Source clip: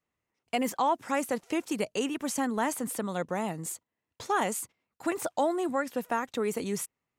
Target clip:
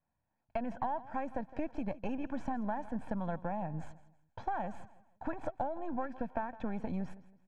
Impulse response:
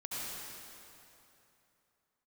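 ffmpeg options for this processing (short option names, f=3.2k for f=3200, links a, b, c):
-af "aeval=exprs='if(lt(val(0),0),0.447*val(0),val(0))':c=same,lowpass=1.3k,aecho=1:1:1.2:0.76,acompressor=threshold=-35dB:ratio=6,aecho=1:1:155|310|465:0.133|0.0453|0.0154,asetrate=42336,aresample=44100,volume=2.5dB"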